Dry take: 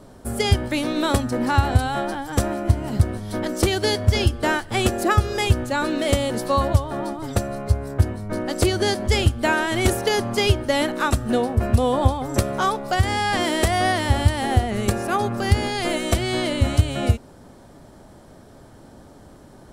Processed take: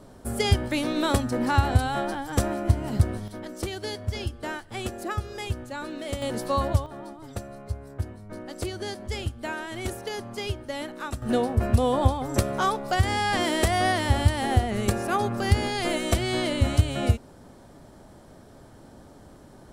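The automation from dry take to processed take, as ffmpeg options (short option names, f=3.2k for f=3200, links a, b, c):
-af "asetnsamples=n=441:p=0,asendcmd='3.28 volume volume -12dB;6.22 volume volume -5dB;6.86 volume volume -12.5dB;11.22 volume volume -3dB',volume=-3dB"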